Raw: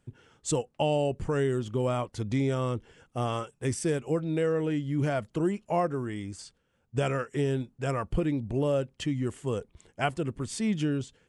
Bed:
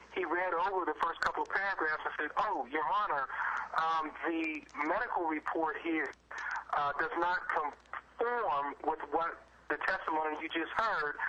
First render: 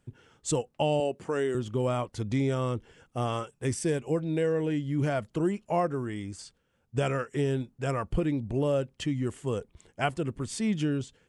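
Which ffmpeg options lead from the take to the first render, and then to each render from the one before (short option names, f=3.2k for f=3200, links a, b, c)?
-filter_complex "[0:a]asettb=1/sr,asplit=3[a][b][c];[a]atrim=end=1.004[d];[b]atrim=start=1:end=1.55,asetpts=PTS-STARTPTS,afade=t=in:d=0.004:c=qsin,afade=t=out:st=0.546:d=0.004:c=qsin,highpass=260[e];[c]atrim=start=1.546[f];[d][e]acrossfade=d=0.004:c1=hsin:c2=qsin[g];[g][f]acrossfade=d=0.004:c1=qsin:c2=hsin,asettb=1/sr,asplit=3[h][i][j];[h]atrim=end=3.834[k];[i]atrim=start=3.83:end=4.9,asetpts=PTS-STARTPTS,afade=t=in:d=0.004:c=qsin,afade=t=out:st=1.066:d=0.004:c=qsin,bandreject=f=1.3k:w=7.2[l];[j]atrim=start=4.896[m];[k][l]acrossfade=d=0.004:c1=hsin:c2=qsin[n];[n][m]acrossfade=d=0.004:c1=qsin:c2=hsin"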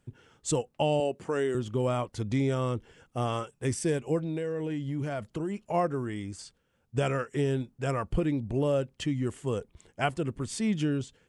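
-filter_complex "[0:a]asplit=3[a][b][c];[a]afade=t=out:st=4.24:d=0.02[d];[b]acompressor=threshold=-28dB:ratio=6:attack=3.2:release=140:knee=1:detection=peak,afade=t=in:st=4.24:d=0.02,afade=t=out:st=5.73:d=0.02[e];[c]afade=t=in:st=5.73:d=0.02[f];[d][e][f]amix=inputs=3:normalize=0"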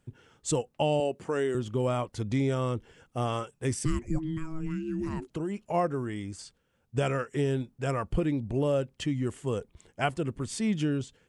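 -filter_complex "[0:a]asettb=1/sr,asplit=3[a][b][c];[a]atrim=end=3.854[d];[b]atrim=start=3.85:end=5.3,asetpts=PTS-STARTPTS,afade=t=in:d=0.004:c=qsin,afade=t=out:st=1.446:d=0.004:c=qsin,afreqshift=-480[e];[c]atrim=start=5.296[f];[d][e]acrossfade=d=0.004:c1=hsin:c2=qsin[g];[g][f]acrossfade=d=0.004:c1=qsin:c2=hsin"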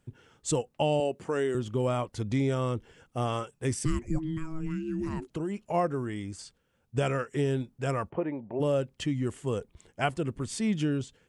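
-filter_complex "[0:a]asplit=3[a][b][c];[a]afade=t=out:st=8.09:d=0.02[d];[b]highpass=270,equalizer=f=280:t=q:w=4:g=-4,equalizer=f=610:t=q:w=4:g=5,equalizer=f=900:t=q:w=4:g=9,equalizer=f=1.4k:t=q:w=4:g=-4,lowpass=f=2.1k:w=0.5412,lowpass=f=2.1k:w=1.3066,afade=t=in:st=8.09:d=0.02,afade=t=out:st=8.59:d=0.02[e];[c]afade=t=in:st=8.59:d=0.02[f];[d][e][f]amix=inputs=3:normalize=0"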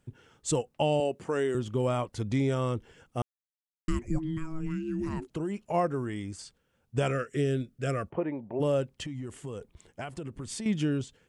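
-filter_complex "[0:a]asettb=1/sr,asplit=3[a][b][c];[a]atrim=end=7.114[d];[b]atrim=start=7.11:end=8.08,asetpts=PTS-STARTPTS,afade=t=in:d=0.004:c=qsin,afade=t=out:st=0.966:d=0.004:c=qsin,asuperstop=centerf=900:order=4:qfactor=1.9[e];[c]atrim=start=8.076[f];[d][e]acrossfade=d=0.004:c1=hsin:c2=qsin[g];[g][f]acrossfade=d=0.004:c1=qsin:c2=hsin,asettb=1/sr,asplit=3[h][i][j];[h]atrim=end=8.874[k];[i]atrim=start=8.87:end=10.66,asetpts=PTS-STARTPTS,afade=t=in:d=0.004:c=qsin,afade=t=out:st=1.786:d=0.004:c=qsin,acompressor=threshold=-33dB:ratio=12:attack=3.2:release=140:knee=1:detection=peak[l];[j]atrim=start=10.656[m];[k][l]acrossfade=d=0.004:c1=hsin:c2=qsin[n];[n][m]acrossfade=d=0.004:c1=qsin:c2=hsin,asplit=3[o][p][q];[o]atrim=end=3.22,asetpts=PTS-STARTPTS,afade=t=out:st=3.216:d=0.004:c=hsin[r];[p]atrim=start=3.22:end=3.88,asetpts=PTS-STARTPTS,volume=0[s];[q]atrim=start=3.88,asetpts=PTS-STARTPTS,afade=t=in:d=0.004:c=hsin[t];[r][s][t]concat=n=3:v=0:a=1"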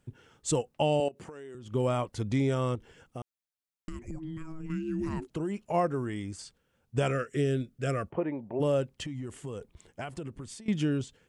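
-filter_complex "[0:a]asettb=1/sr,asplit=3[a][b][c];[a]atrim=end=1.084[d];[b]atrim=start=1.08:end=1.72,asetpts=PTS-STARTPTS,afade=t=in:d=0.004:c=qsin,afade=t=out:st=0.636:d=0.004:c=qsin,acompressor=threshold=-40dB:ratio=20:attack=3.2:release=140:knee=1:detection=peak[e];[c]atrim=start=1.716[f];[d][e]acrossfade=d=0.004:c1=hsin:c2=qsin[g];[g][f]acrossfade=d=0.004:c1=qsin:c2=hsin,asettb=1/sr,asplit=3[h][i][j];[h]atrim=end=2.754[k];[i]atrim=start=2.75:end=4.7,asetpts=PTS-STARTPTS,afade=t=in:d=0.004:c=qsin,afade=t=out:st=1.946:d=0.004:c=qsin,acompressor=threshold=-35dB:ratio=6:attack=3.2:release=140:knee=1:detection=peak[l];[j]atrim=start=4.696[m];[k][l]acrossfade=d=0.004:c1=hsin:c2=qsin[n];[n][m]acrossfade=d=0.004:c1=qsin:c2=hsin,asplit=2[o][p];[o]atrim=end=10.68,asetpts=PTS-STARTPTS,afade=t=out:st=10.14:d=0.54:c=qsin:silence=0.112202[q];[p]atrim=start=10.68,asetpts=PTS-STARTPTS,afade=t=in:d=0.004:c=hsin:silence=0.112202[r];[q][r]concat=n=2:v=0:a=1"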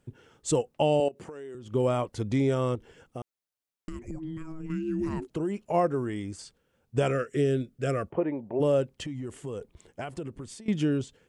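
-af "equalizer=f=430:w=0.88:g=4"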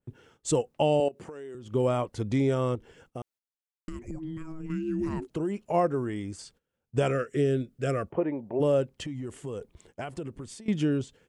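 -af "agate=range=-13dB:threshold=-58dB:ratio=16:detection=peak,adynamicequalizer=threshold=0.00708:dfrequency=2300:dqfactor=0.7:tfrequency=2300:tqfactor=0.7:attack=5:release=100:ratio=0.375:range=1.5:mode=cutabove:tftype=highshelf"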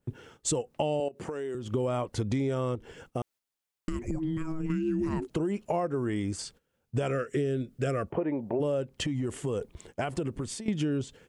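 -filter_complex "[0:a]asplit=2[a][b];[b]alimiter=limit=-23.5dB:level=0:latency=1:release=140,volume=1dB[c];[a][c]amix=inputs=2:normalize=0,acompressor=threshold=-26dB:ratio=6"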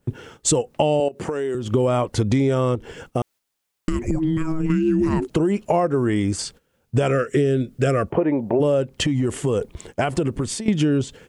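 -af "volume=10dB"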